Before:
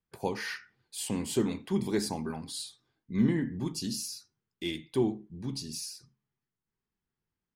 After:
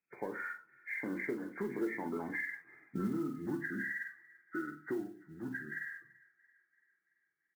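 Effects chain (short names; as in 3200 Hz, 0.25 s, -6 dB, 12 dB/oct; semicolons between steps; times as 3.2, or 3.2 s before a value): nonlinear frequency compression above 1200 Hz 4:1; Doppler pass-by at 2.77, 21 m/s, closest 10 m; HPF 230 Hz 12 dB/oct; bell 340 Hz +9 dB 0.21 oct; compressor 6:1, threshold -46 dBFS, peak gain reduction 19 dB; air absorption 330 m; doubler 47 ms -12.5 dB; on a send: thin delay 0.337 s, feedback 56%, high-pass 1600 Hz, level -20 dB; on the sum: shoebox room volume 120 m³, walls furnished, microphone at 0.4 m; modulation noise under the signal 29 dB; gain +11.5 dB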